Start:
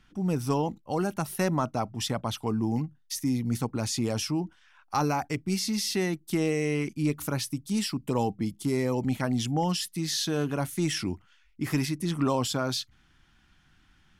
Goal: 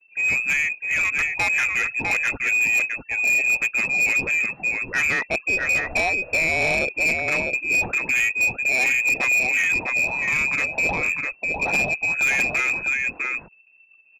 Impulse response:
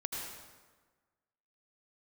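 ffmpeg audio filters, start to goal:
-filter_complex "[0:a]adynamicequalizer=threshold=0.00562:dfrequency=240:dqfactor=4.5:tfrequency=240:tqfactor=4.5:attack=5:release=100:ratio=0.375:range=4:mode=boostabove:tftype=bell,asplit=2[link_01][link_02];[link_02]aecho=0:1:652:0.531[link_03];[link_01][link_03]amix=inputs=2:normalize=0,afftfilt=real='re*gte(hypot(re,im),0.00398)':imag='im*gte(hypot(re,im),0.00398)':win_size=1024:overlap=0.75,asplit=2[link_04][link_05];[link_05]acrusher=bits=4:mode=log:mix=0:aa=0.000001,volume=-4dB[link_06];[link_04][link_06]amix=inputs=2:normalize=0,aexciter=amount=4.7:drive=8.5:freq=2100,lowpass=frequency=2300:width_type=q:width=0.5098,lowpass=frequency=2300:width_type=q:width=0.6013,lowpass=frequency=2300:width_type=q:width=0.9,lowpass=frequency=2300:width_type=q:width=2.563,afreqshift=-2700,asoftclip=type=tanh:threshold=-18.5dB,volume=2.5dB"

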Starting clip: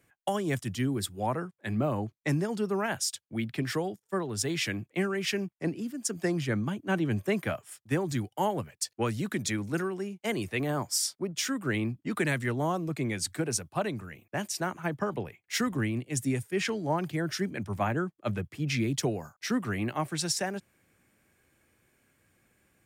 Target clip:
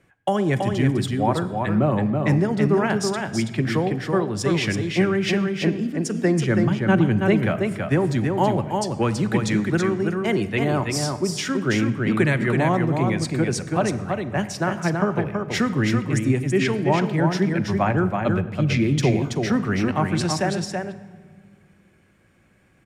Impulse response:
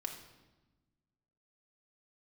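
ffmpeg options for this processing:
-filter_complex "[0:a]aemphasis=mode=reproduction:type=50fm,aecho=1:1:328:0.596,asplit=2[link_01][link_02];[1:a]atrim=start_sample=2205,asetrate=28224,aresample=44100,lowshelf=frequency=210:gain=7[link_03];[link_02][link_03]afir=irnorm=-1:irlink=0,volume=-8dB[link_04];[link_01][link_04]amix=inputs=2:normalize=0,volume=4.5dB"

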